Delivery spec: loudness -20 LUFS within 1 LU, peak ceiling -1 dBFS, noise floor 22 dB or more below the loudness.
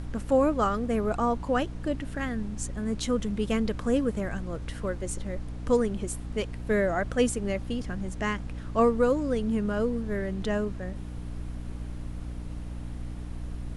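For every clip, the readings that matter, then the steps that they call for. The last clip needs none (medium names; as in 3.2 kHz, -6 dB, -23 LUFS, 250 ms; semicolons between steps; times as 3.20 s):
hum 60 Hz; highest harmonic 300 Hz; hum level -35 dBFS; noise floor -37 dBFS; noise floor target -52 dBFS; loudness -29.5 LUFS; peak level -10.5 dBFS; loudness target -20.0 LUFS
-> hum notches 60/120/180/240/300 Hz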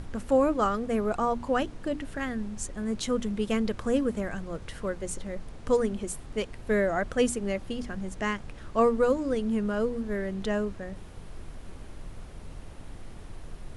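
hum not found; noise floor -44 dBFS; noise floor target -51 dBFS
-> noise print and reduce 7 dB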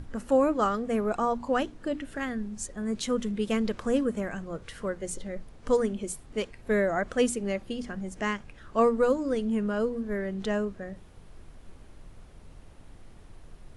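noise floor -51 dBFS; loudness -29.0 LUFS; peak level -11.5 dBFS; loudness target -20.0 LUFS
-> trim +9 dB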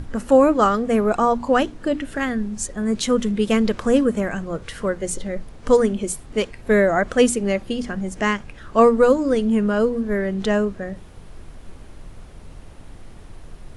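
loudness -20.0 LUFS; peak level -2.5 dBFS; noise floor -42 dBFS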